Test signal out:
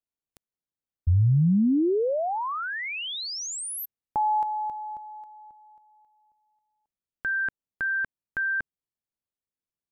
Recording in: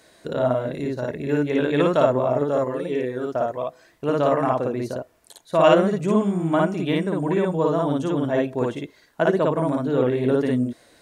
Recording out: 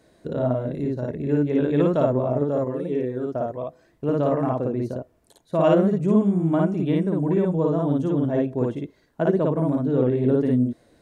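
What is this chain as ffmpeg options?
-af "tiltshelf=f=630:g=7.5,volume=0.668"

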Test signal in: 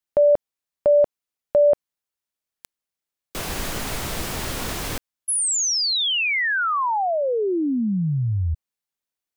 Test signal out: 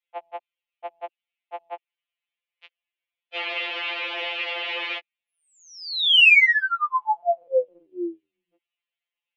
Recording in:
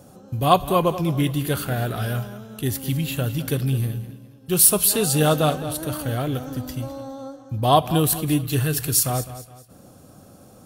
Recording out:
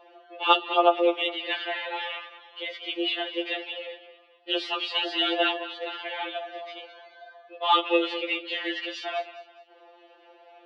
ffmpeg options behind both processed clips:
-af "highpass=f=220:t=q:w=0.5412,highpass=f=220:t=q:w=1.307,lowpass=f=2700:t=q:w=0.5176,lowpass=f=2700:t=q:w=0.7071,lowpass=f=2700:t=q:w=1.932,afreqshift=180,aexciter=amount=6.3:drive=4.5:freq=2200,afftfilt=real='re*2.83*eq(mod(b,8),0)':imag='im*2.83*eq(mod(b,8),0)':win_size=2048:overlap=0.75"

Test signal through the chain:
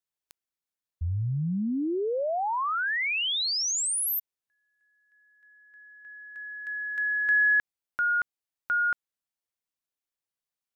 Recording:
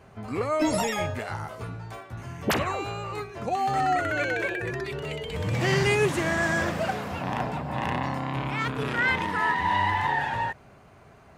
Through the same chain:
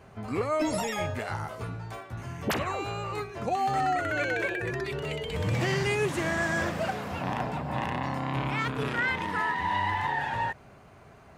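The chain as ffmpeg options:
-af "alimiter=limit=0.119:level=0:latency=1:release=479"

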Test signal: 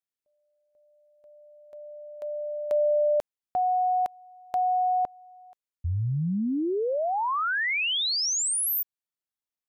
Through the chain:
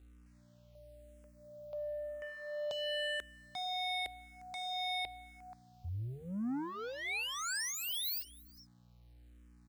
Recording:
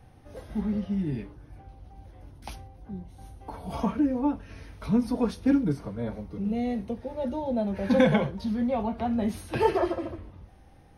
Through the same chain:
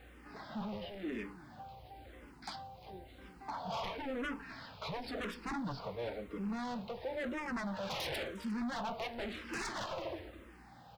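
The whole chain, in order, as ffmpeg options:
-filter_complex "[0:a]highpass=f=870:p=1,asplit=2[s0][s1];[s1]alimiter=level_in=1.26:limit=0.0631:level=0:latency=1:release=477,volume=0.794,volume=1.12[s2];[s0][s2]amix=inputs=2:normalize=0,aresample=11025,aresample=44100,aeval=exprs='0.0355*(abs(mod(val(0)/0.0355+3,4)-2)-1)':c=same,aeval=exprs='val(0)+0.00112*(sin(2*PI*60*n/s)+sin(2*PI*2*60*n/s)/2+sin(2*PI*3*60*n/s)/3+sin(2*PI*4*60*n/s)/4+sin(2*PI*5*60*n/s)/5)':c=same,asoftclip=type=tanh:threshold=0.015,aecho=1:1:354:0.1,acrusher=bits=11:mix=0:aa=0.000001,asplit=2[s3][s4];[s4]afreqshift=-0.97[s5];[s3][s5]amix=inputs=2:normalize=1,volume=1.41"

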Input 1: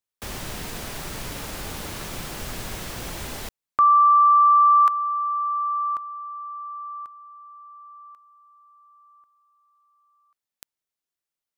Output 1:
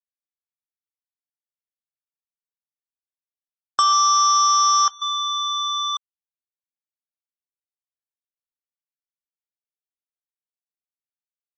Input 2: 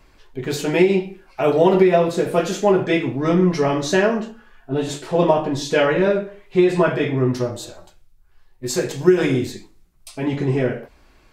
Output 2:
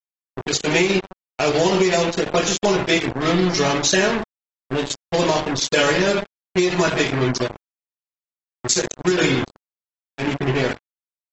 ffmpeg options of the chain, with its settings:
-filter_complex "[0:a]aecho=1:1:139|278:0.119|0.0321,aresample=16000,acrusher=bits=3:mix=0:aa=0.5,aresample=44100,acrossover=split=430|1500[s0][s1][s2];[s1]acompressor=threshold=0.158:ratio=10:attack=1.2:release=22:knee=2.83:detection=peak[s3];[s0][s3][s2]amix=inputs=3:normalize=0,afftdn=nr=34:nf=-32,crystalizer=i=5.5:c=0,aeval=exprs='sgn(val(0))*max(abs(val(0))-0.0473,0)':c=same,acompressor=threshold=0.141:ratio=12:attack=24:release=81:knee=6:detection=rms,volume=1.33" -ar 22050 -c:a aac -b:a 24k

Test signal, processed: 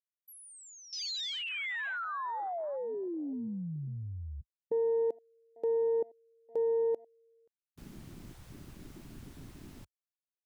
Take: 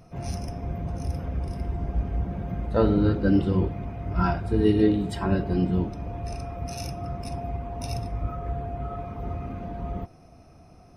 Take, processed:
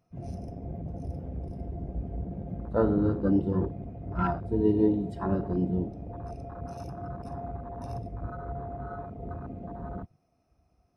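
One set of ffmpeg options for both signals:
-af "afwtdn=0.0224,lowshelf=f=76:g=-9.5,volume=0.75"

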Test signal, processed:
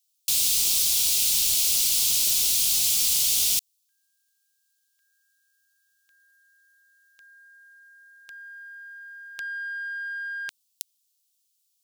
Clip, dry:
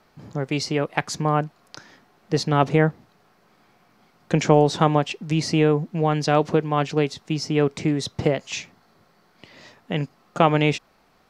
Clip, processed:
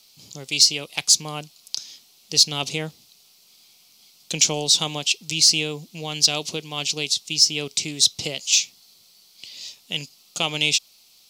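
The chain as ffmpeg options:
-af "aexciter=amount=15.4:drive=8:freq=2700,volume=0.251"

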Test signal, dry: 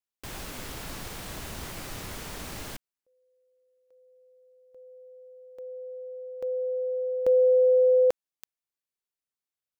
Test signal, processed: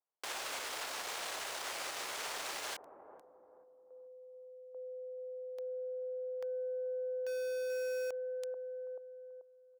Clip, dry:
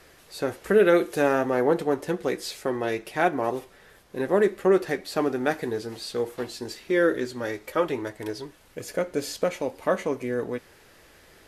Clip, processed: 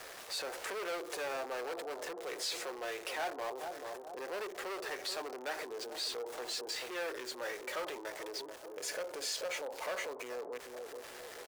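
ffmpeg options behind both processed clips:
-filter_complex "[0:a]lowpass=8900,asoftclip=type=tanh:threshold=0.0631,asplit=2[s0][s1];[s1]adelay=435,lowpass=f=1200:p=1,volume=0.224,asplit=2[s2][s3];[s3]adelay=435,lowpass=f=1200:p=1,volume=0.38,asplit=2[s4][s5];[s5]adelay=435,lowpass=f=1200:p=1,volume=0.38,asplit=2[s6][s7];[s7]adelay=435,lowpass=f=1200:p=1,volume=0.38[s8];[s2][s4][s6][s8]amix=inputs=4:normalize=0[s9];[s0][s9]amix=inputs=2:normalize=0,acompressor=threshold=0.00562:ratio=4:attack=1.9:release=39:knee=6:detection=peak,acrossover=split=460|1100[s10][s11][s12];[s10]aderivative[s13];[s12]aeval=exprs='val(0)*gte(abs(val(0)),0.00178)':c=same[s14];[s13][s11][s14]amix=inputs=3:normalize=0,volume=2.99"

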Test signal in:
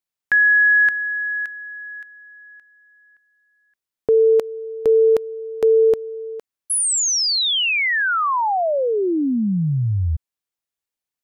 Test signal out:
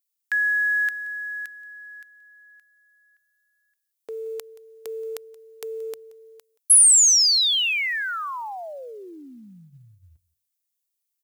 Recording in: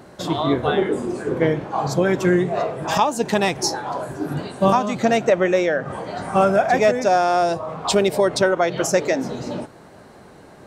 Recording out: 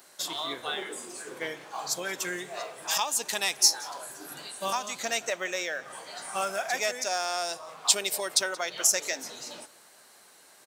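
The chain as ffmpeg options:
-af "aderivative,bandreject=f=50:t=h:w=6,bandreject=f=100:t=h:w=6,bandreject=f=150:t=h:w=6,acrusher=bits=8:mode=log:mix=0:aa=0.000001,aecho=1:1:177:0.0841,volume=1.78"

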